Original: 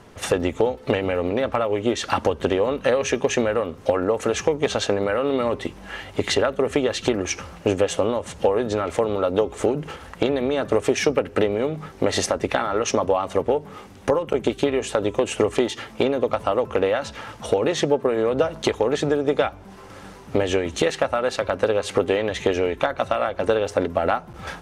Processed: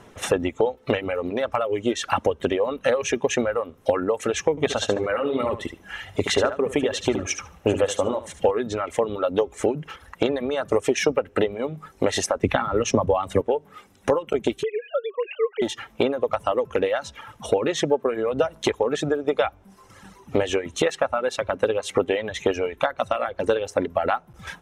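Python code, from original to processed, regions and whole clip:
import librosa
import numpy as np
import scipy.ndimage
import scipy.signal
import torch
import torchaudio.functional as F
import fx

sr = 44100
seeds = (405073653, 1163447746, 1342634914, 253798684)

y = fx.chain(x, sr, fx.peak_eq(hz=86.0, db=4.0, octaves=0.77),
    fx.echo_feedback(ms=73, feedback_pct=25, wet_db=-5.5), at=(4.5, 8.51))
y = fx.chain(y, sr, fx.bass_treble(bass_db=11, treble_db=0),
    fx.band_squash(depth_pct=40), at=(12.43, 13.41))
y = fx.chain(y, sr, fx.sine_speech(),
    fx.dynamic_eq(hz=520.0, q=2.1, threshold_db=-30.0, ratio=4.0, max_db=-5), at=(14.63, 15.62))
y = fx.notch(y, sr, hz=4600.0, q=7.0)
y = fx.dereverb_blind(y, sr, rt60_s=1.7)
y = fx.low_shelf(y, sr, hz=120.0, db=-3.5)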